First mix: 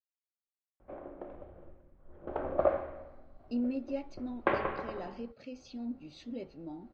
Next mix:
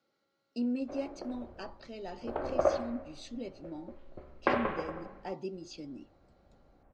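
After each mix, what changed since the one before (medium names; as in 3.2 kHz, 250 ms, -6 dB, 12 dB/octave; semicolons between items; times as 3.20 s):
speech: entry -2.95 s; master: remove distance through air 150 m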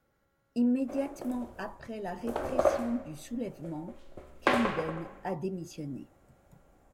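speech: remove cabinet simulation 300–6200 Hz, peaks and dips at 470 Hz -4 dB, 690 Hz -5 dB, 1 kHz -8 dB, 1.7 kHz -10 dB, 4.3 kHz +9 dB; background: remove distance through air 470 m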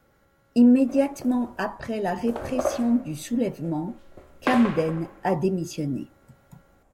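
speech +11.0 dB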